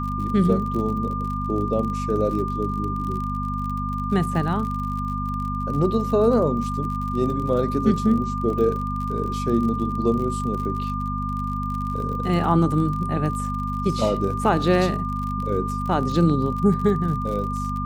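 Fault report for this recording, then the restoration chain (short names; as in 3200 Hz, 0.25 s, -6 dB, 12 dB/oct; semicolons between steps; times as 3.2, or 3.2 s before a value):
crackle 50/s -30 dBFS
hum 50 Hz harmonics 5 -28 dBFS
tone 1200 Hz -28 dBFS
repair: de-click; de-hum 50 Hz, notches 5; notch 1200 Hz, Q 30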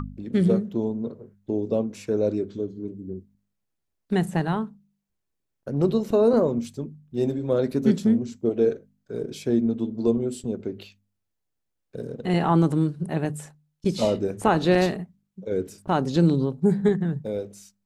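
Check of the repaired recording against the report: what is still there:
none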